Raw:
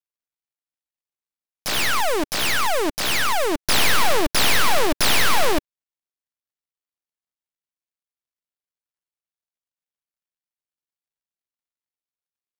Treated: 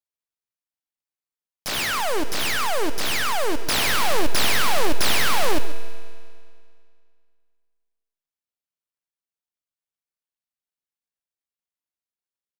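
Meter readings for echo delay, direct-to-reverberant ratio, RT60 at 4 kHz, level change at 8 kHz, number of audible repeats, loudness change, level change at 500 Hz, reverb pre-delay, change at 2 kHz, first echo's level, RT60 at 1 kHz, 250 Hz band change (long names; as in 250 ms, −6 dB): 134 ms, 10.0 dB, 2.1 s, −2.5 dB, 1, −2.5 dB, −2.5 dB, 4 ms, −2.5 dB, −16.0 dB, 2.2 s, −2.5 dB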